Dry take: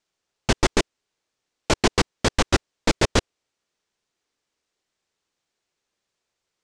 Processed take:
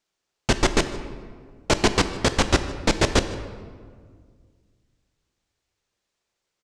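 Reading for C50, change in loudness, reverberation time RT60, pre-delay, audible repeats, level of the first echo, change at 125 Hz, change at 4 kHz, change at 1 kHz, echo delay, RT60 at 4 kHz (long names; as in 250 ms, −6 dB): 10.5 dB, 0.0 dB, 1.8 s, 17 ms, 1, −20.0 dB, +1.0 dB, +0.5 dB, +0.5 dB, 153 ms, 1.1 s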